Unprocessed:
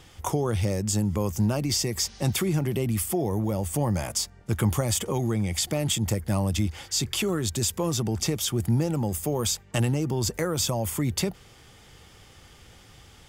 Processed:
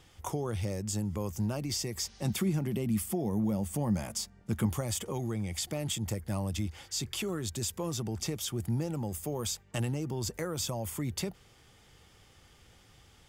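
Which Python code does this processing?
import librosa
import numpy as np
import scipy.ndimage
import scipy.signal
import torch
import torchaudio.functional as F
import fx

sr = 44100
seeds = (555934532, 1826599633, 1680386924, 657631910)

y = fx.peak_eq(x, sr, hz=210.0, db=9.5, octaves=0.5, at=(2.25, 4.66))
y = y * 10.0 ** (-8.0 / 20.0)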